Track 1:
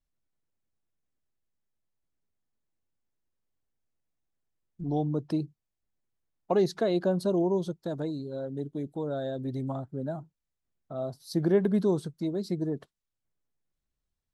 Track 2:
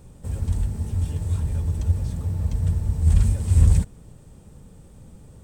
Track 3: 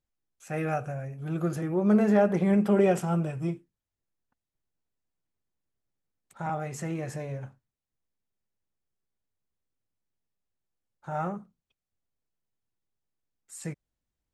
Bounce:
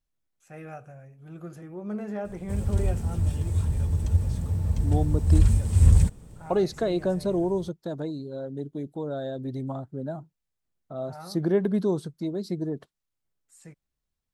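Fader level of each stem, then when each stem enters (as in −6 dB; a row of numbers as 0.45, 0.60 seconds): +0.5, −1.0, −11.5 decibels; 0.00, 2.25, 0.00 seconds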